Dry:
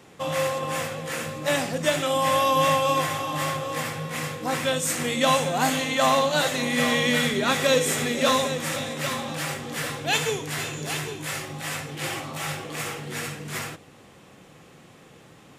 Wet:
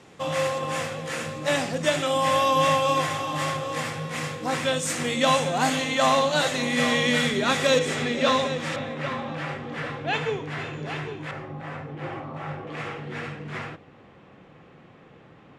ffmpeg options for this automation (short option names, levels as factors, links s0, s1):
-af "asetnsamples=n=441:p=0,asendcmd='7.79 lowpass f 4500;8.76 lowpass f 2300;11.31 lowpass f 1300;12.67 lowpass f 2400',lowpass=8300"